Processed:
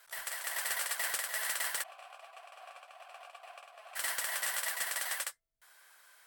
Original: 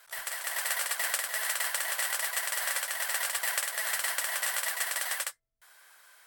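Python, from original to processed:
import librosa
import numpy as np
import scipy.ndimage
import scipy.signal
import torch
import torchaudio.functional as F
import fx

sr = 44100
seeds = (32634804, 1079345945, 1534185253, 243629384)

y = fx.vowel_filter(x, sr, vowel='a', at=(1.82, 3.95), fade=0.02)
y = 10.0 ** (-21.5 / 20.0) * (np.abs((y / 10.0 ** (-21.5 / 20.0) + 3.0) % 4.0 - 2.0) - 1.0)
y = fx.hum_notches(y, sr, base_hz=60, count=3)
y = y * 10.0 ** (-3.5 / 20.0)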